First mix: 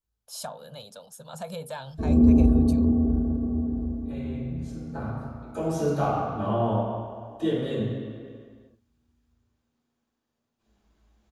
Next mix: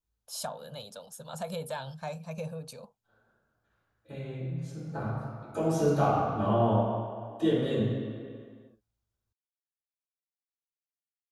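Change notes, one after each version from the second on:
background: muted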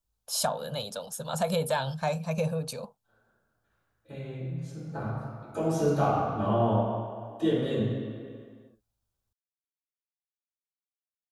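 first voice +8.5 dB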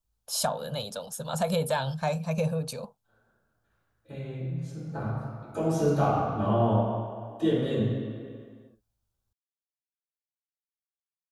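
master: add low-shelf EQ 210 Hz +3 dB

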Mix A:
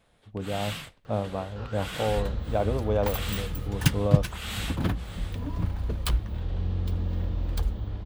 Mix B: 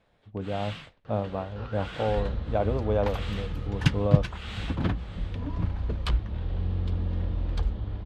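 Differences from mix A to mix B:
first sound −4.0 dB
master: add low-pass filter 4,200 Hz 12 dB per octave

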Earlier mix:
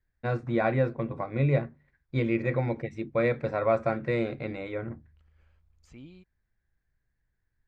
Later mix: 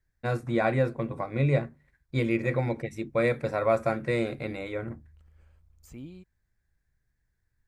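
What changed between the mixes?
second voice: add tilt shelving filter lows +5 dB, about 1,400 Hz
master: remove high-frequency loss of the air 160 metres

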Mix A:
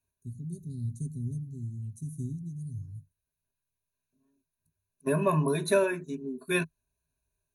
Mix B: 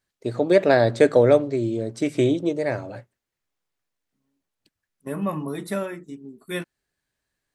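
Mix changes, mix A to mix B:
first voice: remove inverse Chebyshev band-stop filter 650–2,500 Hz, stop band 80 dB
master: remove EQ curve with evenly spaced ripples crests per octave 1.5, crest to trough 17 dB

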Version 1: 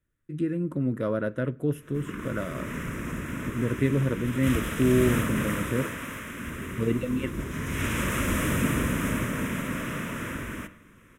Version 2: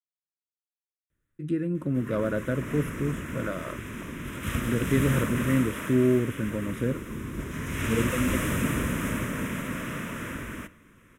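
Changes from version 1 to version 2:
speech: entry +1.10 s
background: send −6.0 dB

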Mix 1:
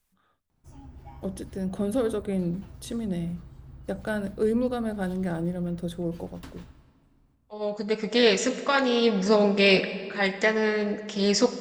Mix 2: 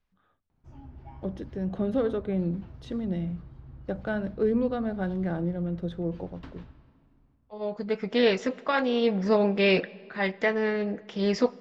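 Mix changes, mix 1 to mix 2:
second voice: send −11.5 dB
master: add high-frequency loss of the air 220 metres

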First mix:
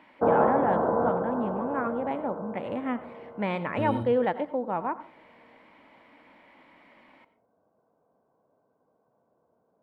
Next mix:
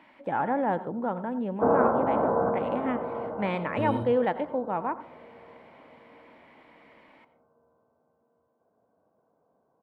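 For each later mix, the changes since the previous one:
background: entry +1.40 s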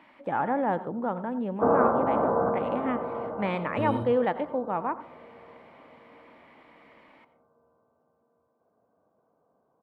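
master: remove notch filter 1,200 Hz, Q 13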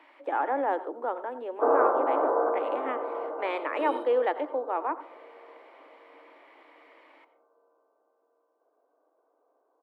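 master: add Butterworth high-pass 290 Hz 72 dB per octave

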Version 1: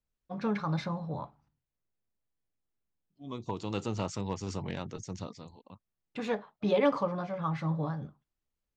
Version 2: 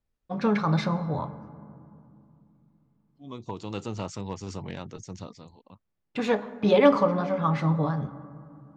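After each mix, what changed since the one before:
first voice +5.5 dB
reverb: on, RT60 2.6 s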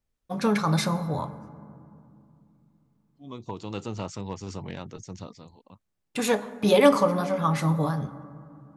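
first voice: remove high-frequency loss of the air 200 metres

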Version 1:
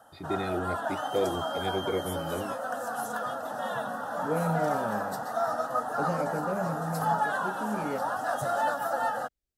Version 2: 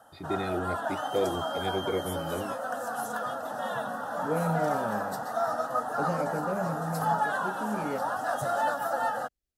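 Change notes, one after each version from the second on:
nothing changed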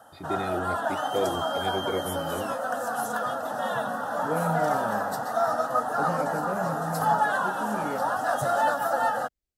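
background +4.0 dB

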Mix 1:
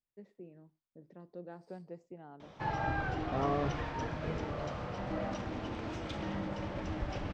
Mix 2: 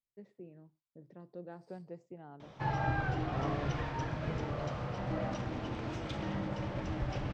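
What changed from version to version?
second voice −7.5 dB
master: add parametric band 130 Hz +9.5 dB 0.25 octaves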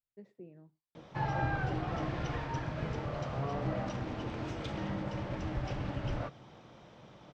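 background: entry −1.45 s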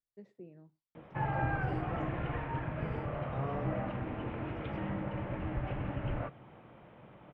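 background: add Butterworth low-pass 2,800 Hz 36 dB per octave

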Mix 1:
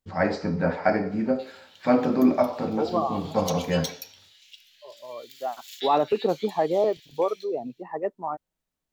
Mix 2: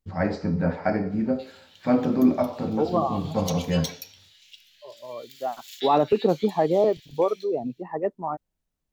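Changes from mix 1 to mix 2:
first voice −4.5 dB
master: add low-shelf EQ 240 Hz +11 dB

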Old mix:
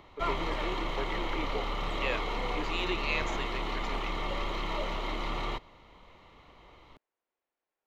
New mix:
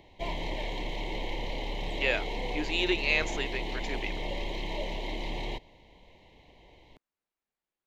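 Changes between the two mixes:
first voice: muted
second voice +6.0 dB
background: add Butterworth band-reject 1,300 Hz, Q 1.3

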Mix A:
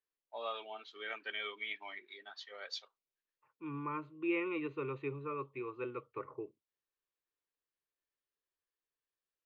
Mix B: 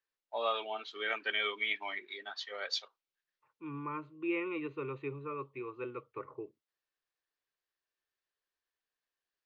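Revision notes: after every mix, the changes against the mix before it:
first voice +7.5 dB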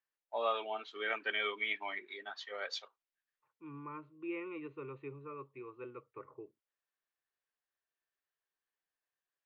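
second voice −6.0 dB
master: add parametric band 4,700 Hz −7 dB 1.3 octaves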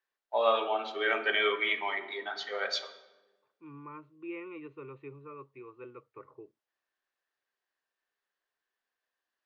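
first voice +5.0 dB
reverb: on, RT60 1.2 s

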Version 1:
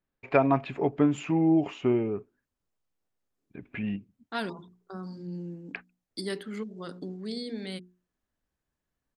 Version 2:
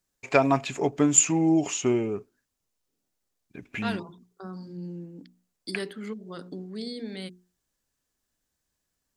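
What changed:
first voice: remove high-frequency loss of the air 420 metres
second voice: entry −0.50 s

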